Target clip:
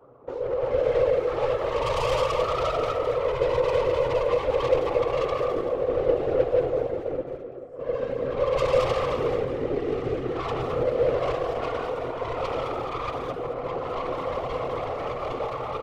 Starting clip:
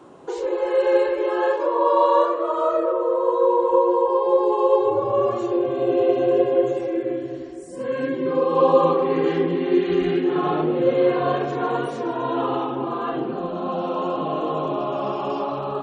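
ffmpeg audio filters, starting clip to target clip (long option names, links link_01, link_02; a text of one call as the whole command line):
ffmpeg -i in.wav -filter_complex "[0:a]adynamicsmooth=sensitivity=3:basefreq=1100,equalizer=frequency=1200:width_type=o:width=0.75:gain=12,asplit=2[link_01][link_02];[link_02]aecho=0:1:134.1|218.7:0.355|0.447[link_03];[link_01][link_03]amix=inputs=2:normalize=0,aeval=exprs='(tanh(6.31*val(0)+0.5)-tanh(0.5))/6.31':channel_layout=same,asplit=2[link_04][link_05];[link_05]adelay=210,highpass=300,lowpass=3400,asoftclip=type=hard:threshold=-22.5dB,volume=-8dB[link_06];[link_04][link_06]amix=inputs=2:normalize=0,afftfilt=real='hypot(re,im)*cos(2*PI*random(0))':imag='hypot(re,im)*sin(2*PI*random(1))':win_size=512:overlap=0.75,equalizer=frequency=125:width_type=o:width=0.33:gain=8,equalizer=frequency=200:width_type=o:width=0.33:gain=-11,equalizer=frequency=315:width_type=o:width=0.33:gain=-6,equalizer=frequency=500:width_type=o:width=0.33:gain=9,equalizer=frequency=1000:width_type=o:width=0.33:gain=-8,equalizer=frequency=1600:width_type=o:width=0.33:gain=-8" out.wav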